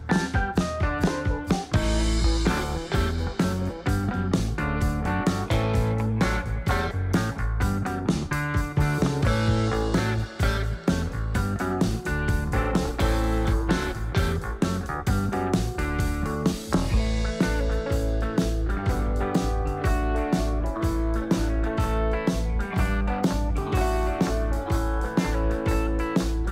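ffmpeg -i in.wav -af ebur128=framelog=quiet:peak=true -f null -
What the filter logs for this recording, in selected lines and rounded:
Integrated loudness:
  I:         -25.8 LUFS
  Threshold: -35.7 LUFS
Loudness range:
  LRA:         1.0 LU
  Threshold: -45.8 LUFS
  LRA low:   -26.1 LUFS
  LRA high:  -25.1 LUFS
True peak:
  Peak:      -11.3 dBFS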